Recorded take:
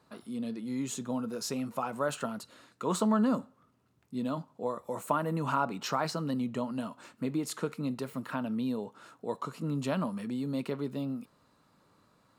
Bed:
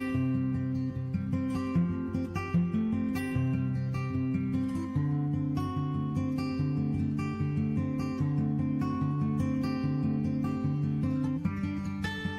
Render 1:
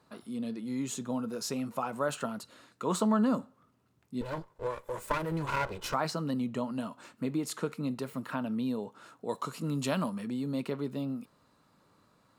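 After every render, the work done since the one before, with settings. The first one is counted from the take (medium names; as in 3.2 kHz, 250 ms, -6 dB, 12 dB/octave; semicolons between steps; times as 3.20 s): 4.21–5.94 s: comb filter that takes the minimum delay 2 ms; 9.29–10.10 s: treble shelf 2.7 kHz +8 dB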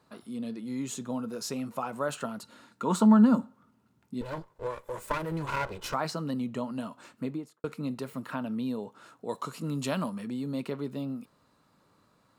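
2.42–4.14 s: small resonant body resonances 220/900/1400 Hz, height 9 dB; 7.19–7.64 s: studio fade out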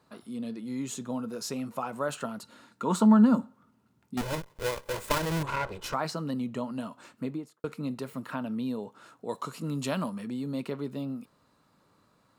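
4.17–5.43 s: square wave that keeps the level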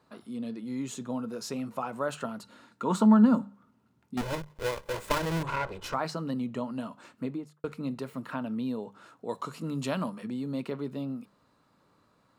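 treble shelf 6 kHz -6 dB; hum notches 50/100/150/200 Hz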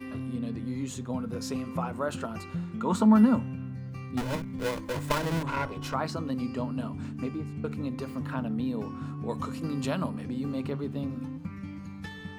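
add bed -7 dB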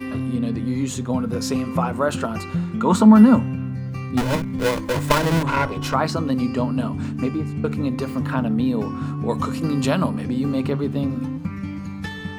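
trim +10 dB; peak limiter -3 dBFS, peak gain reduction 2.5 dB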